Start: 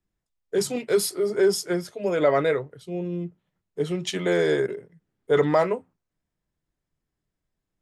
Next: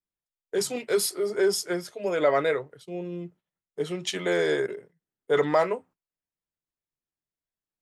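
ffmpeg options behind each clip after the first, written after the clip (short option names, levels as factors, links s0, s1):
-af "agate=range=0.282:threshold=0.00447:ratio=16:detection=peak,lowshelf=f=270:g=-10"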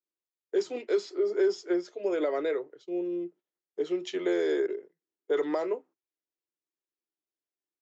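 -filter_complex "[0:a]acrossover=split=690|3700[s0][s1][s2];[s0]acompressor=threshold=0.0501:ratio=4[s3];[s1]acompressor=threshold=0.0282:ratio=4[s4];[s2]acompressor=threshold=0.0112:ratio=4[s5];[s3][s4][s5]amix=inputs=3:normalize=0,aresample=16000,aresample=44100,highpass=f=340:t=q:w=4,volume=0.447"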